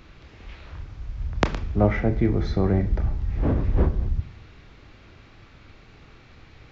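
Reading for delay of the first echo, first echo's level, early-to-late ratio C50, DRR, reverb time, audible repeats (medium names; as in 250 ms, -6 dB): no echo, no echo, 14.5 dB, 8.0 dB, 0.65 s, no echo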